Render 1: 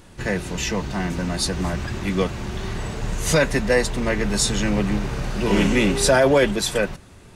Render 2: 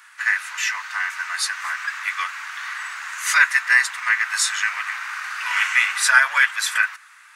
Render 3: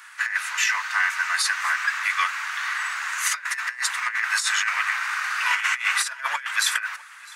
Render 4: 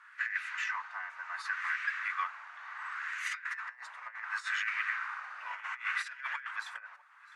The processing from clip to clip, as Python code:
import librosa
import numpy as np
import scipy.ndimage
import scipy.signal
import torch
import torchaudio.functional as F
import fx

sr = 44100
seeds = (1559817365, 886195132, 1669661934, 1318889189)

y1 = scipy.signal.sosfilt(scipy.signal.butter(6, 1200.0, 'highpass', fs=sr, output='sos'), x)
y1 = fx.high_shelf_res(y1, sr, hz=2500.0, db=-7.5, q=1.5)
y1 = y1 * 10.0 ** (9.0 / 20.0)
y2 = fx.over_compress(y1, sr, threshold_db=-23.0, ratio=-0.5)
y2 = y2 + 10.0 ** (-23.0 / 20.0) * np.pad(y2, (int(655 * sr / 1000.0), 0))[:len(y2)]
y3 = fx.filter_lfo_bandpass(y2, sr, shape='sine', hz=0.69, low_hz=590.0, high_hz=2100.0, q=1.6)
y3 = y3 * 10.0 ** (-8.0 / 20.0)